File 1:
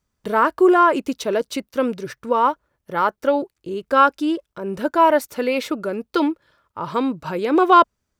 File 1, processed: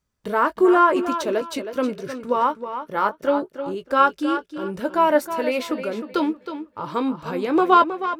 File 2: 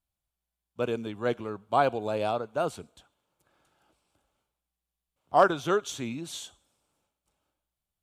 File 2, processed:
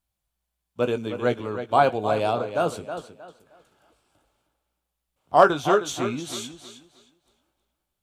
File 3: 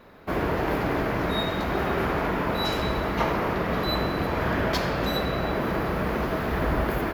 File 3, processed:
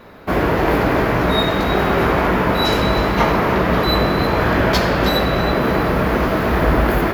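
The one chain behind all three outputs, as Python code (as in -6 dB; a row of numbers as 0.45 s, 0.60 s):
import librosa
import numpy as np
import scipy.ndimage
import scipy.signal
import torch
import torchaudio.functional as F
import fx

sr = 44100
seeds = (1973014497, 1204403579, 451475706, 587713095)

y = fx.chorus_voices(x, sr, voices=2, hz=0.84, base_ms=18, depth_ms=2.1, mix_pct=25)
y = fx.echo_tape(y, sr, ms=314, feedback_pct=28, wet_db=-9.0, lp_hz=5700.0, drive_db=6.0, wow_cents=39)
y = librosa.util.normalize(y) * 10.0 ** (-2 / 20.0)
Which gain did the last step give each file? -0.5 dB, +7.0 dB, +11.0 dB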